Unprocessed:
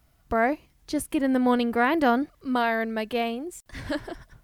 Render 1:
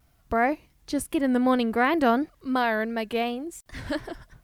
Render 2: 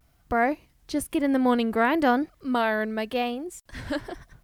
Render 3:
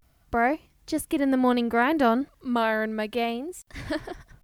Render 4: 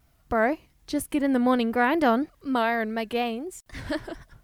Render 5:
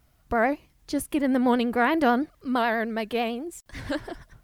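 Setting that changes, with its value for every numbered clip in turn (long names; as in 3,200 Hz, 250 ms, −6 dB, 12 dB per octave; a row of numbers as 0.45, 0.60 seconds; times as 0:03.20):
pitch vibrato, speed: 2.8, 1, 0.31, 4.1, 9.1 Hertz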